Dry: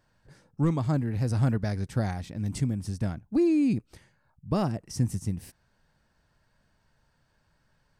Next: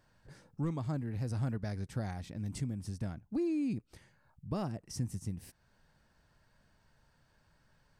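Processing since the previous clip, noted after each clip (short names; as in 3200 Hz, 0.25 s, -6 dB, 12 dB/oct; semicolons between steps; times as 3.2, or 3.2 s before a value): compressor 1.5:1, threshold -49 dBFS, peak gain reduction 10.5 dB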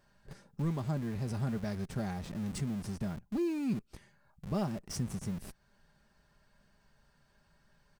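comb 5 ms, depth 46%; in parallel at -8 dB: Schmitt trigger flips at -45.5 dBFS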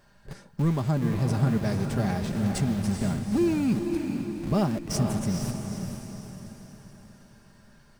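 diffused feedback echo 0.466 s, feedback 47%, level -5 dB; gain +8.5 dB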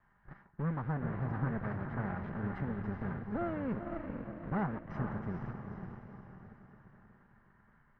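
minimum comb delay 1 ms; ladder low-pass 1800 Hz, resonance 55%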